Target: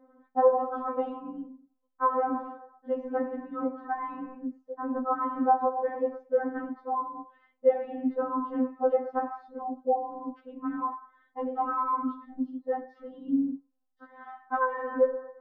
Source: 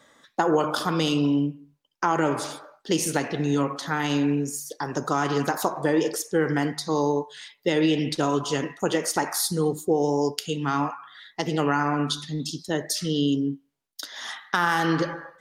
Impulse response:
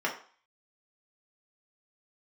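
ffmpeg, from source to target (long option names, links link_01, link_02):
-af "lowpass=frequency=1100:width=0.5412,lowpass=frequency=1100:width=1.3066,bandreject=frequency=396.3:width_type=h:width=4,bandreject=frequency=792.6:width_type=h:width=4,bandreject=frequency=1188.9:width_type=h:width=4,bandreject=frequency=1585.2:width_type=h:width=4,bandreject=frequency=1981.5:width_type=h:width=4,afftfilt=real='re*3.46*eq(mod(b,12),0)':imag='im*3.46*eq(mod(b,12),0)':win_size=2048:overlap=0.75,volume=3dB"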